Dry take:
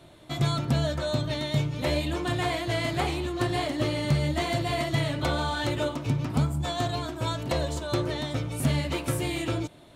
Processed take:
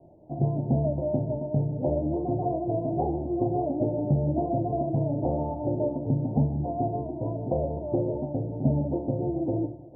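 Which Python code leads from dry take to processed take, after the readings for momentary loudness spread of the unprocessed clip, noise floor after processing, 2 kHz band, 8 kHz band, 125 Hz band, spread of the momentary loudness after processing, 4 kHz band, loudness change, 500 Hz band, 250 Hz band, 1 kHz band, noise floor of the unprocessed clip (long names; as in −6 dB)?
4 LU, −42 dBFS, below −40 dB, below −40 dB, 0.0 dB, 4 LU, below −40 dB, 0.0 dB, +2.5 dB, +2.5 dB, −1.0 dB, −51 dBFS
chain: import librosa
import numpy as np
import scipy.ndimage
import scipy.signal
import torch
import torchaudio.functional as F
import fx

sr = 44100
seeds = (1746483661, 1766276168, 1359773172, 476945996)

p1 = fx.low_shelf(x, sr, hz=82.0, db=-5.5)
p2 = p1 + fx.echo_heads(p1, sr, ms=151, heads='first and third', feedback_pct=44, wet_db=-17.5, dry=0)
p3 = fx.dynamic_eq(p2, sr, hz=300.0, q=0.8, threshold_db=-38.0, ratio=4.0, max_db=5)
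p4 = scipy.signal.sosfilt(scipy.signal.butter(12, 850.0, 'lowpass', fs=sr, output='sos'), p3)
y = fx.hum_notches(p4, sr, base_hz=60, count=6)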